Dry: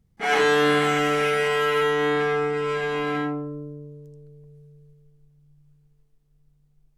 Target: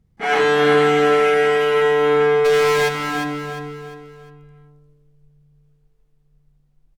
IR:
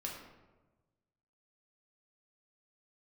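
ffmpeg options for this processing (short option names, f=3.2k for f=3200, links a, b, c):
-filter_complex "[0:a]highshelf=f=4.5k:g=-7,asplit=3[a][b][c];[a]afade=t=out:st=2.44:d=0.02[d];[b]asplit=2[e][f];[f]highpass=f=720:p=1,volume=35dB,asoftclip=type=tanh:threshold=-17.5dB[g];[e][g]amix=inputs=2:normalize=0,lowpass=f=6.3k:p=1,volume=-6dB,afade=t=in:st=2.44:d=0.02,afade=t=out:st=2.88:d=0.02[h];[c]afade=t=in:st=2.88:d=0.02[i];[d][h][i]amix=inputs=3:normalize=0,aecho=1:1:352|704|1056|1408:0.447|0.165|0.0612|0.0226,asplit=2[j][k];[1:a]atrim=start_sample=2205[l];[k][l]afir=irnorm=-1:irlink=0,volume=-11dB[m];[j][m]amix=inputs=2:normalize=0,volume=2dB"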